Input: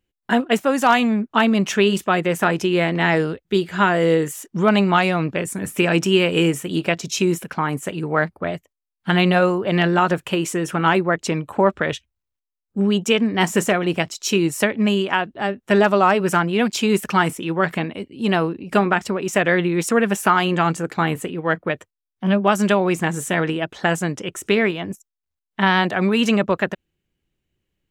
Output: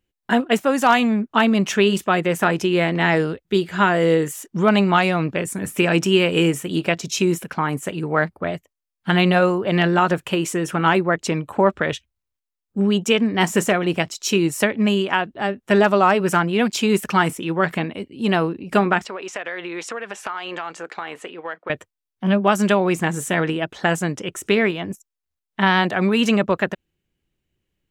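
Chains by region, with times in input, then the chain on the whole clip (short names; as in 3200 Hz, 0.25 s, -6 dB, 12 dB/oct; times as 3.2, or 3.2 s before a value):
19.05–21.7 BPF 550–5000 Hz + compressor 5:1, threshold -25 dBFS
whole clip: dry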